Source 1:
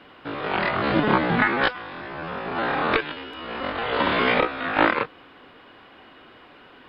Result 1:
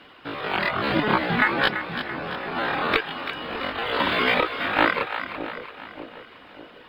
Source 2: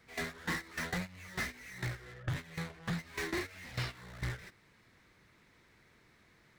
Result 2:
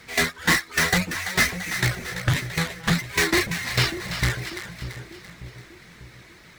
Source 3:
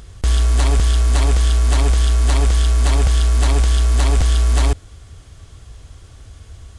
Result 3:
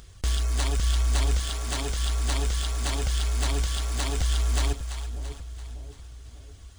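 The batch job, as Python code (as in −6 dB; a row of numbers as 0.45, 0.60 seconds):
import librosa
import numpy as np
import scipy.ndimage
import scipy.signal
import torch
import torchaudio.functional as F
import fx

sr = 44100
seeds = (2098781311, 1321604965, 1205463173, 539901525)

p1 = scipy.signal.medfilt(x, 3)
p2 = fx.high_shelf(p1, sr, hz=2200.0, db=7.5)
p3 = fx.dereverb_blind(p2, sr, rt60_s=0.54)
p4 = p3 + fx.echo_split(p3, sr, split_hz=660.0, low_ms=594, high_ms=337, feedback_pct=52, wet_db=-9.5, dry=0)
y = p4 * 10.0 ** (-26 / 20.0) / np.sqrt(np.mean(np.square(p4)))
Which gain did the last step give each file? −2.0, +14.0, −9.5 decibels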